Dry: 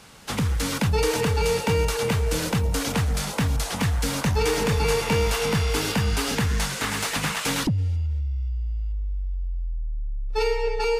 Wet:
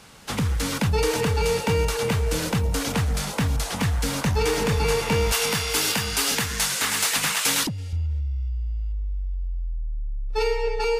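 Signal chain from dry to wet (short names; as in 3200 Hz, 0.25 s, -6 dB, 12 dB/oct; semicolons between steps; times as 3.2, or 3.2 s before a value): 5.32–7.93 tilt +2.5 dB/oct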